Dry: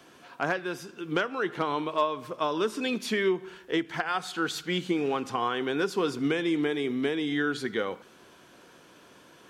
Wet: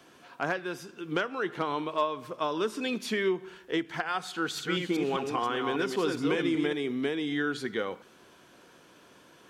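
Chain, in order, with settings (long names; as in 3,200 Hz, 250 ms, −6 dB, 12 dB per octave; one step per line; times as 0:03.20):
0:04.37–0:06.73: delay that plays each chunk backwards 199 ms, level −4 dB
level −2 dB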